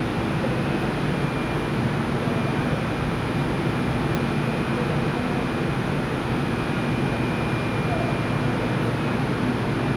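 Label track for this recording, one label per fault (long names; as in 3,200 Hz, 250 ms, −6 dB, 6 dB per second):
4.150000	4.150000	click −10 dBFS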